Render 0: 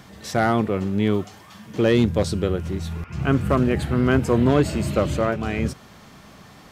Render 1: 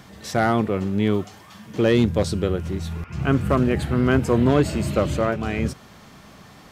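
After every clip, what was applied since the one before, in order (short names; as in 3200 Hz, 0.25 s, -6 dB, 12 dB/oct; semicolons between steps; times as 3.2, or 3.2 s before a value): nothing audible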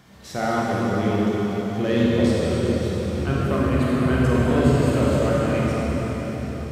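reverb RT60 5.2 s, pre-delay 26 ms, DRR -7 dB; gain -7.5 dB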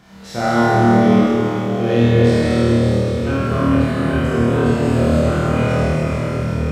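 vocal rider within 4 dB 2 s; high shelf 8000 Hz -6 dB; on a send: flutter echo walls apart 4.4 m, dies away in 1.3 s; on the sum: gain -1 dB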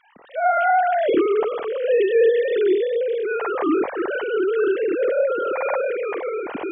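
sine-wave speech; gain -5 dB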